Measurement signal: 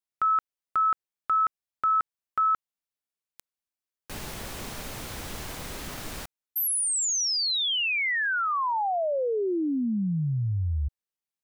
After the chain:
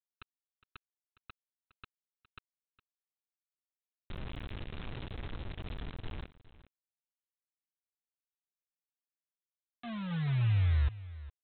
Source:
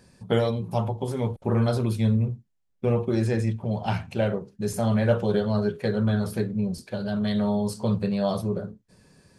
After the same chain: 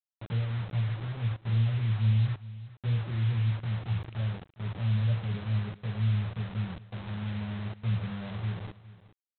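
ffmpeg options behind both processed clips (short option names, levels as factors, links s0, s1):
-af "firequalizer=gain_entry='entry(110,0);entry(290,-25);entry(2700,-20)':delay=0.05:min_phase=1,aresample=8000,acrusher=bits=6:mix=0:aa=0.000001,aresample=44100,aecho=1:1:411:0.133"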